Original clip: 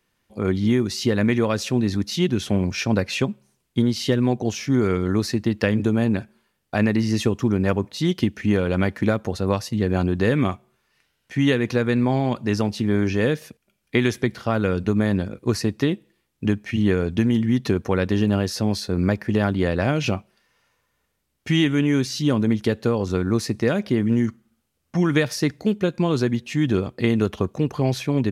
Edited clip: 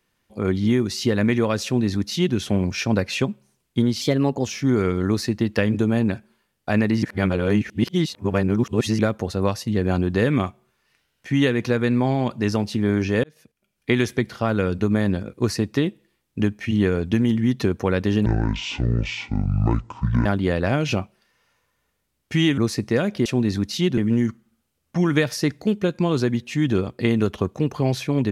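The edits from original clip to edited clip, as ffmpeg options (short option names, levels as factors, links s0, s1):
-filter_complex "[0:a]asplit=11[s0][s1][s2][s3][s4][s5][s6][s7][s8][s9][s10];[s0]atrim=end=4.014[s11];[s1]atrim=start=4.01:end=4.51,asetpts=PTS-STARTPTS,asetrate=49392,aresample=44100,atrim=end_sample=19687,asetpts=PTS-STARTPTS[s12];[s2]atrim=start=4.506:end=7.082[s13];[s3]atrim=start=7.078:end=9.042,asetpts=PTS-STARTPTS,areverse[s14];[s4]atrim=start=9.038:end=13.29,asetpts=PTS-STARTPTS,afade=t=out:st=4.248:d=0.004:c=hsin[s15];[s5]atrim=start=13.29:end=18.314,asetpts=PTS-STARTPTS,afade=t=in:d=0.7[s16];[s6]atrim=start=18.31:end=19.41,asetpts=PTS-STARTPTS,asetrate=24255,aresample=44100[s17];[s7]atrim=start=19.406:end=21.732[s18];[s8]atrim=start=23.288:end=23.972[s19];[s9]atrim=start=1.638:end=2.362[s20];[s10]atrim=start=23.968[s21];[s11][s12]acrossfade=d=0.004:c1=hsin:c2=hsin[s22];[s22][s13]acrossfade=d=0.004:c1=hsin:c2=hsin[s23];[s23][s14]acrossfade=d=0.004:c1=hsin:c2=hsin[s24];[s15][s16]concat=n=2:v=0:a=1[s25];[s24][s25]acrossfade=d=0.004:c1=hsin:c2=hsin[s26];[s26][s17]acrossfade=d=0.004:c1=hsin:c2=hsin[s27];[s27][s18]acrossfade=d=0.004:c1=hsin:c2=hsin[s28];[s28][s19]acrossfade=d=0.004:c1=hsin:c2=hsin[s29];[s29][s20]acrossfade=d=0.004:c1=hsin:c2=hsin[s30];[s30][s21]acrossfade=d=0.004:c1=hsin:c2=hsin"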